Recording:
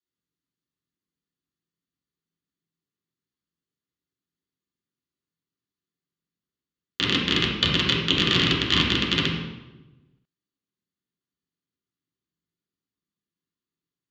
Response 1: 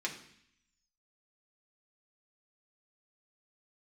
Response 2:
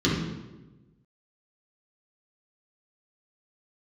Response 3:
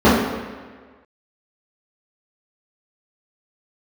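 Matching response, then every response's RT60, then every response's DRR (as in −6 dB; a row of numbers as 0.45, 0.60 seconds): 2; 0.65, 1.1, 1.5 seconds; −1.5, −6.5, −12.5 decibels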